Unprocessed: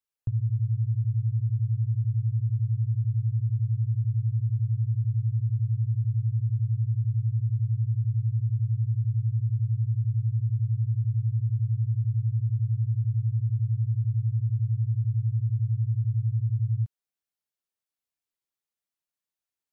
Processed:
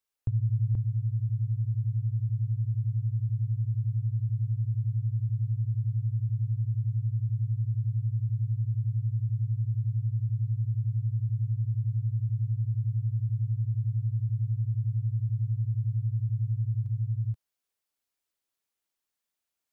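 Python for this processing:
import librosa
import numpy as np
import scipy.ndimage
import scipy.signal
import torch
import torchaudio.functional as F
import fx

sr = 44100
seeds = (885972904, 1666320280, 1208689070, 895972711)

y = fx.peak_eq(x, sr, hz=140.0, db=-6.5, octaves=0.69)
y = y + 10.0 ** (-3.0 / 20.0) * np.pad(y, (int(480 * sr / 1000.0), 0))[:len(y)]
y = y * librosa.db_to_amplitude(3.0)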